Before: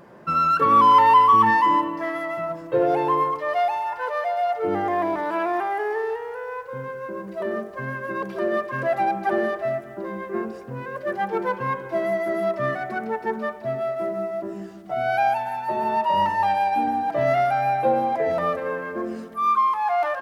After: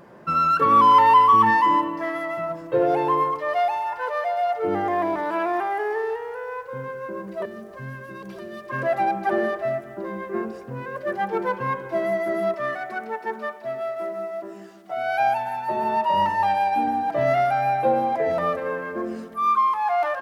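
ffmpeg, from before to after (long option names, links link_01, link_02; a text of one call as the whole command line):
ffmpeg -i in.wav -filter_complex "[0:a]asettb=1/sr,asplit=3[link_01][link_02][link_03];[link_01]atrim=end=7.454[link_04];[link_02]atrim=start=7.45:end=8.7,asetpts=PTS-STARTPTS,afade=type=in:duration=0.004:curve=qsin,afade=type=out:start_time=1.246:duration=0.004:curve=qsin,acrossover=split=190|3000[link_05][link_06][link_07];[link_06]acompressor=threshold=-37dB:ratio=6:attack=3.2:release=140:knee=2.83:detection=peak[link_08];[link_05][link_08][link_07]amix=inputs=3:normalize=0[link_09];[link_03]atrim=start=8.696[link_10];[link_04][link_09]acrossfade=duration=0.004:curve1=hsin:curve2=qsin[link_11];[link_11][link_10]acrossfade=duration=0.004:curve1=qsin:curve2=hsin,asettb=1/sr,asplit=3[link_12][link_13][link_14];[link_12]atrim=end=12.544[link_15];[link_13]atrim=start=12.54:end=15.2,asetpts=PTS-STARTPTS,afade=type=in:duration=0.004:curve=qsin,afade=type=out:start_time=2.656:duration=0.004:curve=qsin,highpass=frequency=580:poles=1[link_16];[link_14]atrim=start=15.196[link_17];[link_15][link_16]acrossfade=duration=0.004:curve1=hsin:curve2=qsin[link_18];[link_18][link_17]acrossfade=duration=0.004:curve1=qsin:curve2=hsin" out.wav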